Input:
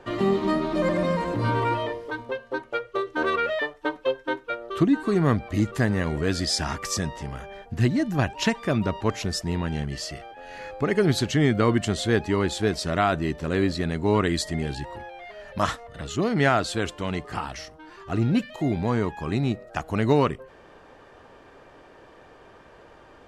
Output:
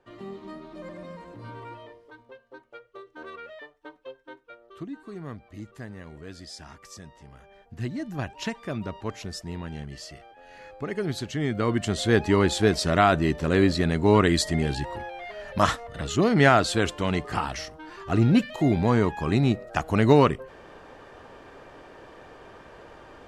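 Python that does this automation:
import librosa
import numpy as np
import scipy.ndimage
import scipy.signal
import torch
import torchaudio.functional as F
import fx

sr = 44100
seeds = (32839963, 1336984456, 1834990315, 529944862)

y = fx.gain(x, sr, db=fx.line((7.03, -17.0), (8.1, -8.0), (11.33, -8.0), (12.27, 3.0)))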